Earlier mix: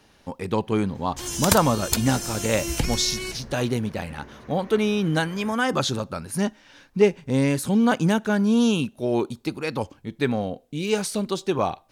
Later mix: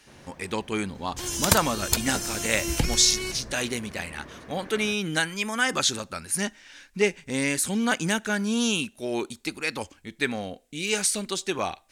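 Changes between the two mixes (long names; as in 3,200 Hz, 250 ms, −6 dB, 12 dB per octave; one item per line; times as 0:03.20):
speech: add graphic EQ with 10 bands 125 Hz −12 dB, 250 Hz −3 dB, 500 Hz −5 dB, 1,000 Hz −5 dB, 2,000 Hz +6 dB, 8,000 Hz +9 dB
first sound: entry −0.60 s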